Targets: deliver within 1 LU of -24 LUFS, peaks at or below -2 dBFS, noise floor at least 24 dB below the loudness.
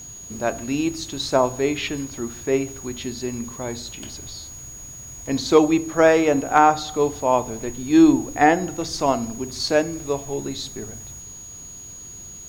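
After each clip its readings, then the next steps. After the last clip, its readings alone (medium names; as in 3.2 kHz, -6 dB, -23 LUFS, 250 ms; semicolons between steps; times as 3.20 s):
steady tone 6.7 kHz; tone level -37 dBFS; loudness -21.5 LUFS; peak level -2.5 dBFS; loudness target -24.0 LUFS
-> band-stop 6.7 kHz, Q 30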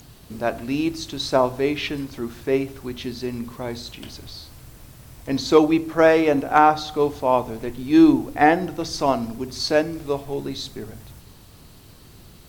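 steady tone not found; loudness -21.5 LUFS; peak level -2.5 dBFS; loudness target -24.0 LUFS
-> trim -2.5 dB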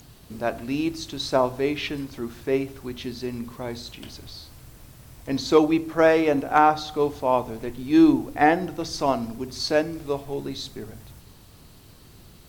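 loudness -24.0 LUFS; peak level -5.0 dBFS; noise floor -50 dBFS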